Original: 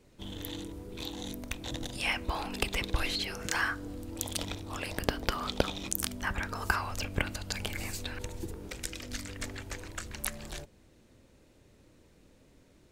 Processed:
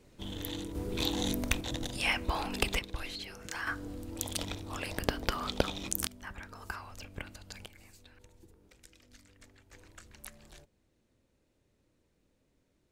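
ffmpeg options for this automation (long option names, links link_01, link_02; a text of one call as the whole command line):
ffmpeg -i in.wav -af "asetnsamples=nb_out_samples=441:pad=0,asendcmd='0.75 volume volume 7.5dB;1.61 volume volume 1dB;2.79 volume volume -8.5dB;3.67 volume volume -1dB;6.07 volume volume -11.5dB;7.66 volume volume -19.5dB;9.73 volume volume -13dB',volume=1dB" out.wav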